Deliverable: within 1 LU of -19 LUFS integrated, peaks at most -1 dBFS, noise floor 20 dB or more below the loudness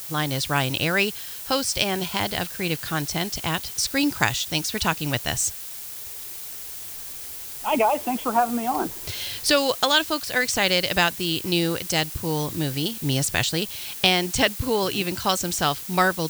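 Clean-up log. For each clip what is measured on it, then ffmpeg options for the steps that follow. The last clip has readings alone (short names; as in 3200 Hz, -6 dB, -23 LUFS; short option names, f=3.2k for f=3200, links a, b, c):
noise floor -36 dBFS; noise floor target -44 dBFS; loudness -23.5 LUFS; peak -2.5 dBFS; loudness target -19.0 LUFS
-> -af "afftdn=nr=8:nf=-36"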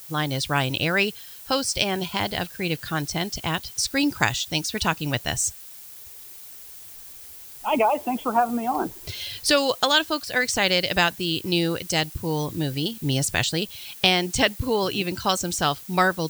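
noise floor -43 dBFS; noise floor target -44 dBFS
-> -af "afftdn=nr=6:nf=-43"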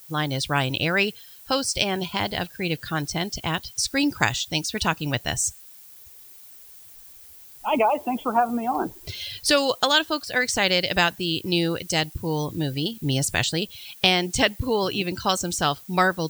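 noise floor -47 dBFS; loudness -24.0 LUFS; peak -2.0 dBFS; loudness target -19.0 LUFS
-> -af "volume=5dB,alimiter=limit=-1dB:level=0:latency=1"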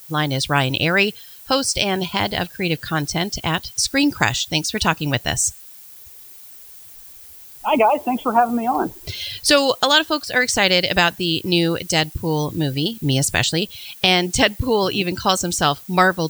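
loudness -19.0 LUFS; peak -1.0 dBFS; noise floor -42 dBFS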